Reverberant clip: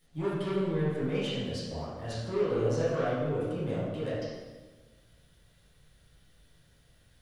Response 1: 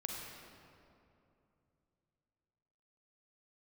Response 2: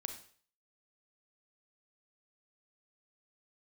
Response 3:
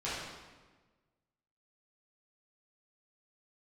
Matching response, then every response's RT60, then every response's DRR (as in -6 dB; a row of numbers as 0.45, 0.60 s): 3; 2.8, 0.50, 1.3 s; -0.5, 6.0, -11.0 dB